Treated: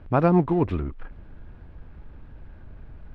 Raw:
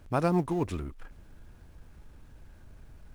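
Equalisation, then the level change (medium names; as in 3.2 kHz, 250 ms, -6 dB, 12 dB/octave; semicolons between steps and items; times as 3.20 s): distance through air 380 m; +8.0 dB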